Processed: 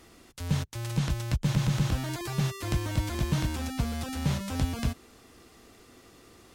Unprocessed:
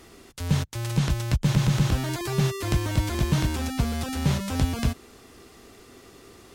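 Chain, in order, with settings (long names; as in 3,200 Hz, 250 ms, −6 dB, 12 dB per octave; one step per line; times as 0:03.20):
notch filter 400 Hz, Q 12
level −4.5 dB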